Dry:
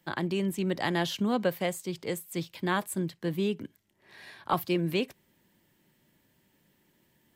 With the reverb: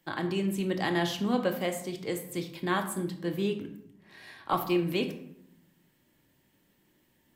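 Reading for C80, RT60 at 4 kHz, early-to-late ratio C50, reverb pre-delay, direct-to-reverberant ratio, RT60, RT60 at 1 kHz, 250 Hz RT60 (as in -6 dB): 12.0 dB, 0.45 s, 9.5 dB, 3 ms, 4.5 dB, 0.75 s, 0.65 s, 1.1 s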